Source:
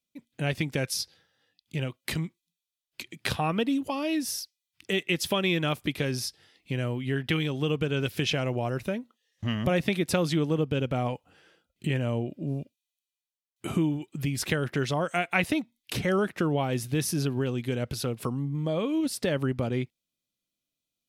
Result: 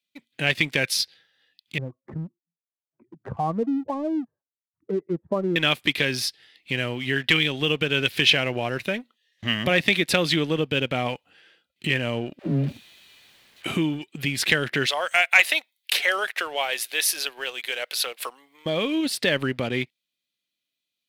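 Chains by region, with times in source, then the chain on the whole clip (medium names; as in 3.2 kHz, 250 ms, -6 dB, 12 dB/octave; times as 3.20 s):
1.78–5.56 s: spectral contrast enhancement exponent 1.7 + steep low-pass 1.2 kHz 48 dB/octave
12.39–13.66 s: jump at every zero crossing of -42 dBFS + tilt EQ -3 dB/octave + phase dispersion lows, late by 80 ms, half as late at 380 Hz
14.86–18.66 s: high-pass 540 Hz 24 dB/octave + treble shelf 9.9 kHz +11 dB
whole clip: high-pass 210 Hz 6 dB/octave; high-order bell 2.7 kHz +9 dB; waveshaping leveller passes 1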